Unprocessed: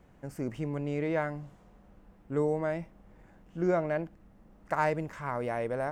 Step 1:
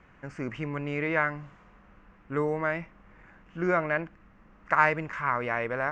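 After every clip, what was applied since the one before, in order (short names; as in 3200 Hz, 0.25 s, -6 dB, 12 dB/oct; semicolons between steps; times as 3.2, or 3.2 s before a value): steep low-pass 7100 Hz 36 dB/oct; band shelf 1700 Hz +11 dB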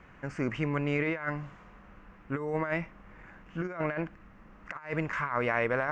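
negative-ratio compressor -30 dBFS, ratio -0.5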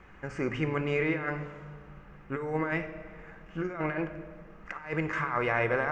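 reverb RT60 1.5 s, pre-delay 3 ms, DRR 8 dB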